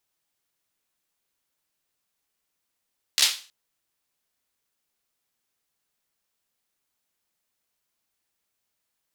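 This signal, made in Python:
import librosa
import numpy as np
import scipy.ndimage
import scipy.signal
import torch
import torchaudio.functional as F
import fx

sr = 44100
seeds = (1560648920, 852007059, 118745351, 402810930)

y = fx.drum_clap(sr, seeds[0], length_s=0.32, bursts=4, spacing_ms=14, hz=3800.0, decay_s=0.36)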